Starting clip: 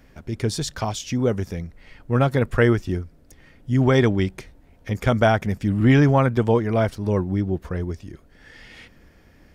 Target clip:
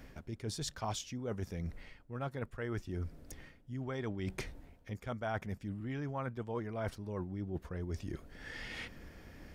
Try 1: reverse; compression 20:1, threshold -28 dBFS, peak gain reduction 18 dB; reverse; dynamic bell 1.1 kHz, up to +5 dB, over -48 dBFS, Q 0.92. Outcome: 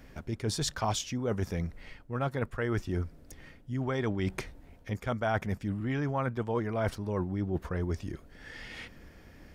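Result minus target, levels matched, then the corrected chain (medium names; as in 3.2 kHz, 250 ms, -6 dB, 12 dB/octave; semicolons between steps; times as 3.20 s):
compression: peak gain reduction -7.5 dB
reverse; compression 20:1, threshold -36 dBFS, peak gain reduction 25.5 dB; reverse; dynamic bell 1.1 kHz, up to +5 dB, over -48 dBFS, Q 0.92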